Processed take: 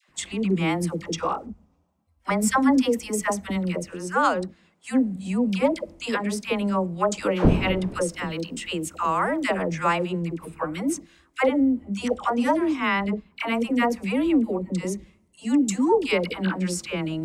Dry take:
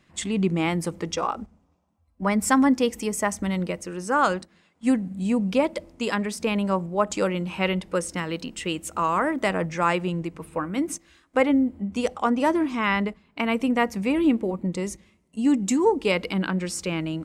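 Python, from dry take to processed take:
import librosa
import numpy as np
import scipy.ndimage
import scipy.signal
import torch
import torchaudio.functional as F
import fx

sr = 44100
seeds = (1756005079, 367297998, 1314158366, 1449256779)

y = fx.dmg_wind(x, sr, seeds[0], corner_hz=300.0, level_db=-26.0, at=(7.35, 8.22), fade=0.02)
y = fx.dispersion(y, sr, late='lows', ms=90.0, hz=740.0)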